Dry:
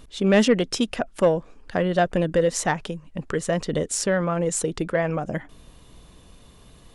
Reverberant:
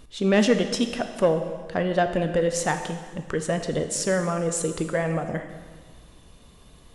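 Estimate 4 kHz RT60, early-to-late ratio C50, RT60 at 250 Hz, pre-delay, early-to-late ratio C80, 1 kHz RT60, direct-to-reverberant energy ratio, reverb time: 1.5 s, 8.5 dB, 1.6 s, 5 ms, 10.0 dB, 1.6 s, 7.0 dB, 1.6 s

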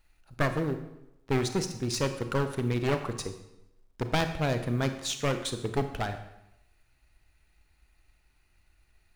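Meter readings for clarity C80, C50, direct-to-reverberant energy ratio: 12.0 dB, 10.0 dB, 8.0 dB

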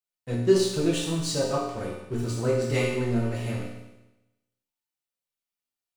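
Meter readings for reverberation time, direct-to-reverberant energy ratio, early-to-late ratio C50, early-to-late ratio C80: 1.0 s, -7.0 dB, 1.5 dB, 4.0 dB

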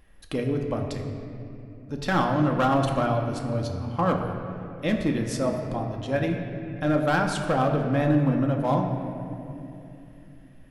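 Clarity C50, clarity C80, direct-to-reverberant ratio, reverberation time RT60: 4.5 dB, 5.5 dB, 1.5 dB, 2.9 s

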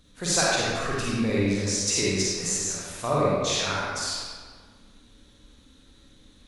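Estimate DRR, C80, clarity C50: -6.5 dB, -1.0 dB, -4.5 dB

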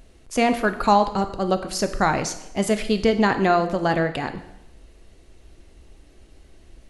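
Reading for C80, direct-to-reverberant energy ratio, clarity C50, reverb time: 13.5 dB, 8.0 dB, 11.5 dB, 0.80 s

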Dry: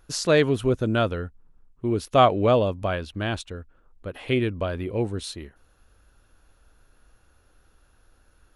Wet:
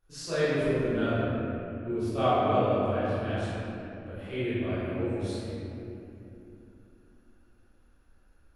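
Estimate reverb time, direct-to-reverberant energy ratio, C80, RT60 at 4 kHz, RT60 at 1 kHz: 2.9 s, -16.0 dB, -4.0 dB, 1.8 s, 2.6 s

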